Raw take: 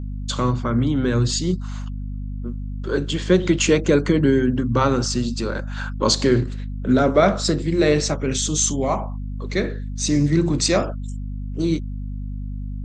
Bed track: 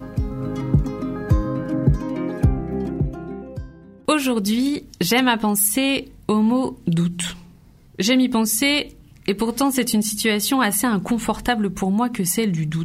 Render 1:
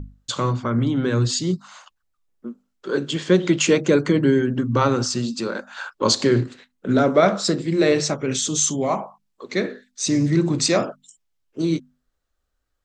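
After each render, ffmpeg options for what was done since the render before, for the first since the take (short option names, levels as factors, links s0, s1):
-af "bandreject=f=50:t=h:w=6,bandreject=f=100:t=h:w=6,bandreject=f=150:t=h:w=6,bandreject=f=200:t=h:w=6,bandreject=f=250:t=h:w=6"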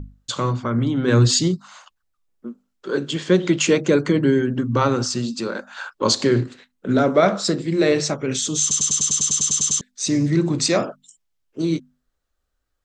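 -filter_complex "[0:a]asplit=3[s0][s1][s2];[s0]afade=t=out:st=1.07:d=0.02[s3];[s1]acontrast=46,afade=t=in:st=1.07:d=0.02,afade=t=out:st=1.47:d=0.02[s4];[s2]afade=t=in:st=1.47:d=0.02[s5];[s3][s4][s5]amix=inputs=3:normalize=0,asplit=13[s6][s7][s8][s9][s10][s11][s12][s13][s14][s15][s16][s17][s18];[s6]atrim=end=8.712[s19];[s7]atrim=start=8.608:end=8.712[s20];[s8]atrim=start=8.608:end=8.712[s21];[s9]atrim=start=8.608:end=8.712[s22];[s10]atrim=start=8.608:end=8.712[s23];[s11]atrim=start=8.608:end=8.712[s24];[s12]atrim=start=8.608:end=8.712[s25];[s13]atrim=start=8.608:end=8.712[s26];[s14]atrim=start=8.608:end=8.712[s27];[s15]atrim=start=8.608:end=8.712[s28];[s16]atrim=start=8.608:end=8.712[s29];[s17]atrim=start=8.608:end=8.712[s30];[s18]atrim=start=9.808[s31];[s19][s20]acrossfade=d=0.004:c1=hsin:c2=hsin[s32];[s32][s21]acrossfade=d=0.004:c1=hsin:c2=hsin[s33];[s33][s22]acrossfade=d=0.004:c1=hsin:c2=hsin[s34];[s34][s23]acrossfade=d=0.004:c1=hsin:c2=hsin[s35];[s35][s24]acrossfade=d=0.004:c1=hsin:c2=hsin[s36];[s36][s25]acrossfade=d=0.004:c1=hsin:c2=hsin[s37];[s37][s26]acrossfade=d=0.004:c1=hsin:c2=hsin[s38];[s38][s27]acrossfade=d=0.004:c1=hsin:c2=hsin[s39];[s39][s28]acrossfade=d=0.004:c1=hsin:c2=hsin[s40];[s40][s29]acrossfade=d=0.004:c1=hsin:c2=hsin[s41];[s41][s30]acrossfade=d=0.004:c1=hsin:c2=hsin[s42];[s42][s31]acrossfade=d=0.004:c1=hsin:c2=hsin"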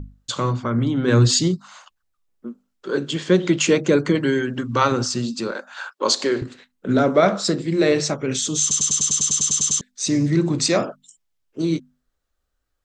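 -filter_complex "[0:a]asettb=1/sr,asplit=3[s0][s1][s2];[s0]atrim=end=4.154[s3];[s1]atrim=start=4.15:end=4.92,asetpts=PTS-STARTPTS,afade=t=in:d=0.004:c=qsin,afade=t=out:st=0.766:d=0.004:c=qsin,tiltshelf=f=650:g=-5.5[s4];[s2]atrim=start=4.916[s5];[s3][s4]acrossfade=d=0.004:c1=hsin:c2=qsin[s6];[s6][s5]acrossfade=d=0.004:c1=qsin:c2=hsin,asettb=1/sr,asplit=3[s7][s8][s9];[s7]atrim=end=5.514[s10];[s8]atrim=start=5.51:end=6.42,asetpts=PTS-STARTPTS,afade=t=in:d=0.004:c=qsin,afade=t=out:st=0.906:d=0.004:c=qsin,highpass=360[s11];[s9]atrim=start=6.416[s12];[s10][s11]acrossfade=d=0.004:c1=hsin:c2=qsin[s13];[s13][s12]acrossfade=d=0.004:c1=qsin:c2=hsin"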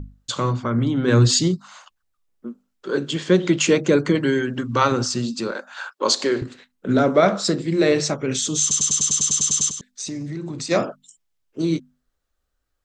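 -filter_complex "[0:a]asplit=3[s0][s1][s2];[s0]afade=t=out:st=9.69:d=0.02[s3];[s1]acompressor=threshold=0.0447:ratio=6:attack=3.2:release=140:knee=1:detection=peak,afade=t=in:st=9.69:d=0.02,afade=t=out:st=10.7:d=0.02[s4];[s2]afade=t=in:st=10.7:d=0.02[s5];[s3][s4][s5]amix=inputs=3:normalize=0"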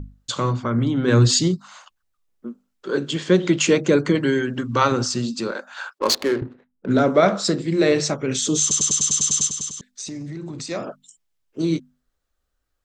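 -filter_complex "[0:a]asplit=3[s0][s1][s2];[s0]afade=t=out:st=5.98:d=0.02[s3];[s1]adynamicsmooth=sensitivity=3:basefreq=680,afade=t=in:st=5.98:d=0.02,afade=t=out:st=6.89:d=0.02[s4];[s2]afade=t=in:st=6.89:d=0.02[s5];[s3][s4][s5]amix=inputs=3:normalize=0,asettb=1/sr,asplit=3[s6][s7][s8];[s6]atrim=end=8.424[s9];[s7]atrim=start=8.42:end=8.92,asetpts=PTS-STARTPTS,afade=t=in:d=0.004:c=qsin,afade=t=out:st=0.496:d=0.004:c=qsin,equalizer=f=430:t=o:w=1.7:g=7.5[s10];[s8]atrim=start=8.916[s11];[s9][s10]acrossfade=d=0.004:c1=hsin:c2=qsin[s12];[s12][s11]acrossfade=d=0.004:c1=qsin:c2=hsin,asettb=1/sr,asplit=3[s13][s14][s15];[s13]atrim=end=9.474[s16];[s14]atrim=start=9.47:end=10.87,asetpts=PTS-STARTPTS,afade=t=in:d=0.004:c=qsin,afade=t=out:st=1.396:d=0.004:c=qsin,acompressor=threshold=0.0316:ratio=2:attack=3.2:release=140:knee=1:detection=peak[s17];[s15]atrim=start=10.866[s18];[s16][s17]acrossfade=d=0.004:c1=hsin:c2=qsin[s19];[s19][s18]acrossfade=d=0.004:c1=qsin:c2=hsin"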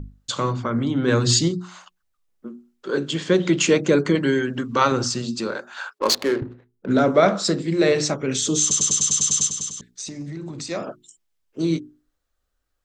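-af "bandreject=f=60:t=h:w=6,bandreject=f=120:t=h:w=6,bandreject=f=180:t=h:w=6,bandreject=f=240:t=h:w=6,bandreject=f=300:t=h:w=6,bandreject=f=360:t=h:w=6,bandreject=f=420:t=h:w=6"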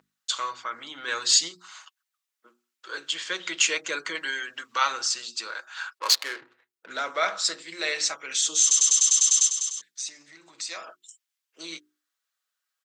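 -af "highpass=1400,aecho=1:1:6.2:0.35"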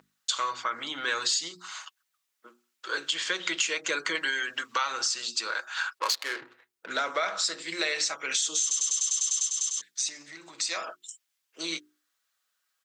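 -filter_complex "[0:a]asplit=2[s0][s1];[s1]alimiter=limit=0.15:level=0:latency=1:release=32,volume=0.841[s2];[s0][s2]amix=inputs=2:normalize=0,acompressor=threshold=0.0562:ratio=6"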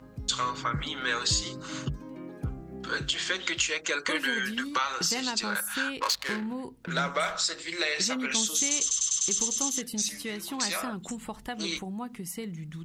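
-filter_complex "[1:a]volume=0.15[s0];[0:a][s0]amix=inputs=2:normalize=0"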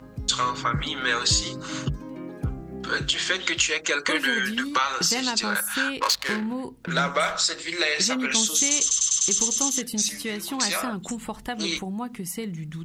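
-af "volume=1.78"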